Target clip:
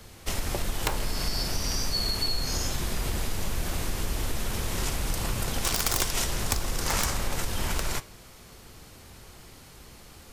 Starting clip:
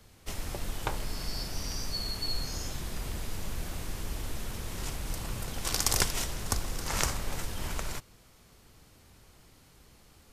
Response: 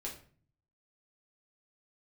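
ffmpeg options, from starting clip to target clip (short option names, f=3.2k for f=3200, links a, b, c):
-filter_complex "[0:a]aeval=exprs='0.631*(cos(1*acos(clip(val(0)/0.631,-1,1)))-cos(1*PI/2))+0.126*(cos(4*acos(clip(val(0)/0.631,-1,1)))-cos(4*PI/2))+0.158*(cos(5*acos(clip(val(0)/0.631,-1,1)))-cos(5*PI/2))+0.0398*(cos(6*acos(clip(val(0)/0.631,-1,1)))-cos(6*PI/2))+0.00501*(cos(8*acos(clip(val(0)/0.631,-1,1)))-cos(8*PI/2))':c=same,acompressor=threshold=-26dB:ratio=3,aeval=exprs='(mod(5.96*val(0)+1,2)-1)/5.96':c=same,asplit=2[a][b];[b]highpass=250[c];[1:a]atrim=start_sample=2205[d];[c][d]afir=irnorm=-1:irlink=0,volume=-10dB[e];[a][e]amix=inputs=2:normalize=0,volume=1.5dB"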